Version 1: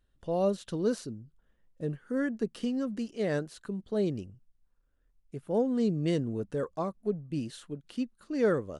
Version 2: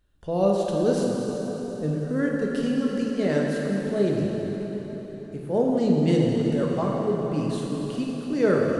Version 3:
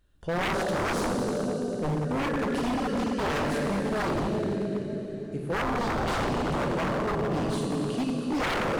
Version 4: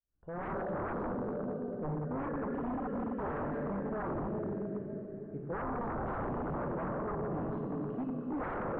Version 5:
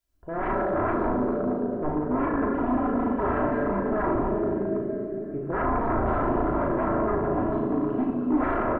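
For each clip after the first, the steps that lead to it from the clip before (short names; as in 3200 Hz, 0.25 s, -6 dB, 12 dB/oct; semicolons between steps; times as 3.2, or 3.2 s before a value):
plate-style reverb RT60 4.7 s, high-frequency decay 0.8×, DRR -2.5 dB; gain +3.5 dB
wavefolder -24 dBFS; gain +1.5 dB
opening faded in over 0.53 s; LPF 1500 Hz 24 dB/oct; gain -8 dB
comb 3 ms, depth 54%; on a send: flutter echo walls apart 6.2 m, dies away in 0.38 s; on the sum: gain +9 dB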